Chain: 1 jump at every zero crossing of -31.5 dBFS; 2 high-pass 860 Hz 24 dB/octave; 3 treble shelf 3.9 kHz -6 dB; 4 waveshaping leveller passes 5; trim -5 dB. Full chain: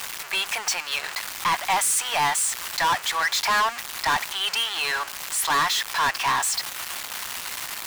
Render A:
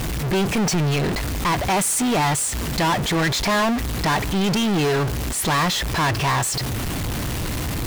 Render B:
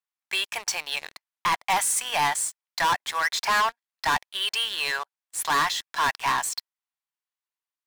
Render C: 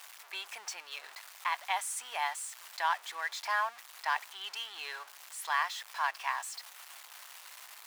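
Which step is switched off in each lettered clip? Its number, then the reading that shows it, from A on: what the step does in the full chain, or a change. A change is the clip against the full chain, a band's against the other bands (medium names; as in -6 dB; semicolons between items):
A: 2, crest factor change -3.5 dB; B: 1, distortion -11 dB; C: 4, crest factor change +12.0 dB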